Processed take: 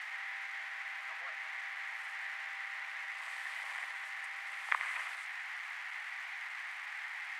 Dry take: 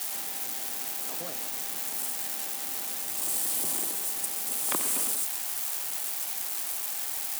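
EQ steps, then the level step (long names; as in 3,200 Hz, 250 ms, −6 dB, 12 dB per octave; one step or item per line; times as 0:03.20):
inverse Chebyshev high-pass filter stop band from 260 Hz, stop band 60 dB
low-pass with resonance 2,000 Hz, resonance Q 5.6
−3.5 dB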